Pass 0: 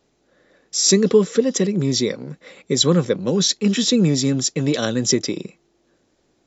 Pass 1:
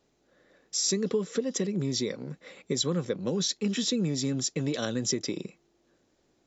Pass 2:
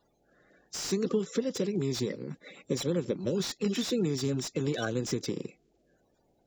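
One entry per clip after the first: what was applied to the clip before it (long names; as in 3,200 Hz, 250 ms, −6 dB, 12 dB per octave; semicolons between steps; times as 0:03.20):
downward compressor 3 to 1, threshold −21 dBFS, peak gain reduction 9.5 dB; level −5.5 dB
spectral magnitudes quantised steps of 30 dB; notch filter 1,900 Hz, Q 29; slew-rate limiting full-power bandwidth 100 Hz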